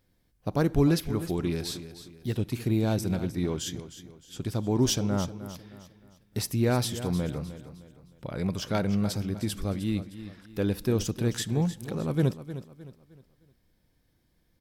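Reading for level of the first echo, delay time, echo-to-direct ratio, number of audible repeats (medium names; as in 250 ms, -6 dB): -13.0 dB, 308 ms, -12.5 dB, 3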